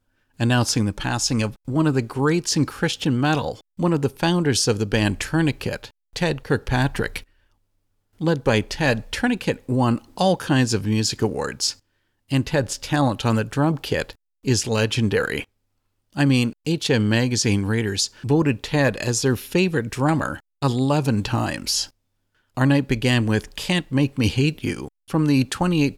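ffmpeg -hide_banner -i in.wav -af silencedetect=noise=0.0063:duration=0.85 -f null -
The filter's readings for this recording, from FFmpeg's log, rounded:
silence_start: 7.24
silence_end: 8.19 | silence_duration: 0.95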